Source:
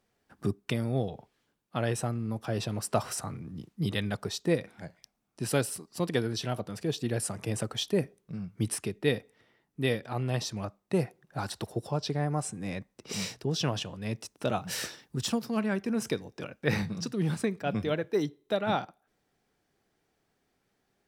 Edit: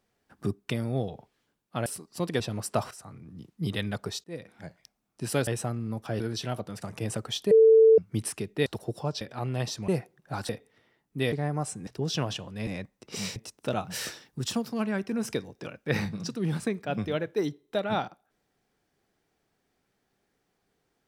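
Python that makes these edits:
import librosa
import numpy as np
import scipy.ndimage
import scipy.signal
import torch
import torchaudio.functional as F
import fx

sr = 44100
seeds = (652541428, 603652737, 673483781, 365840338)

y = fx.edit(x, sr, fx.swap(start_s=1.86, length_s=0.73, other_s=5.66, other_length_s=0.54),
    fx.fade_in_from(start_s=3.1, length_s=0.79, floor_db=-14.5),
    fx.fade_in_span(start_s=4.43, length_s=0.4),
    fx.cut(start_s=6.82, length_s=0.46),
    fx.bleep(start_s=7.97, length_s=0.47, hz=445.0, db=-13.0),
    fx.swap(start_s=9.12, length_s=0.83, other_s=11.54, other_length_s=0.55),
    fx.cut(start_s=10.62, length_s=0.31),
    fx.move(start_s=12.64, length_s=0.69, to_s=14.13), tone=tone)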